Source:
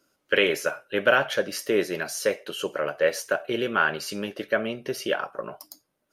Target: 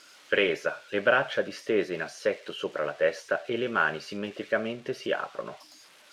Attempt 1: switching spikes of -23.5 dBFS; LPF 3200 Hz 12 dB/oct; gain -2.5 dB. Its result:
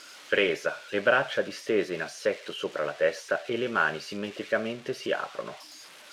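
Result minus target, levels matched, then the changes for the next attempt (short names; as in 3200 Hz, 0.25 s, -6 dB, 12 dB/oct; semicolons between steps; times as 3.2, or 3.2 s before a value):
switching spikes: distortion +6 dB
change: switching spikes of -29.5 dBFS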